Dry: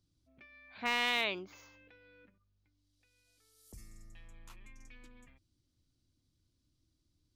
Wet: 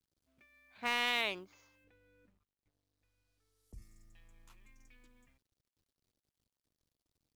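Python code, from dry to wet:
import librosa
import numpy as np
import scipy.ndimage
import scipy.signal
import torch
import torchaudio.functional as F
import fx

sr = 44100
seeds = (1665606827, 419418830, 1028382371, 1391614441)

y = fx.law_mismatch(x, sr, coded='A')
y = fx.tilt_eq(y, sr, slope=-2.0, at=(1.84, 3.82))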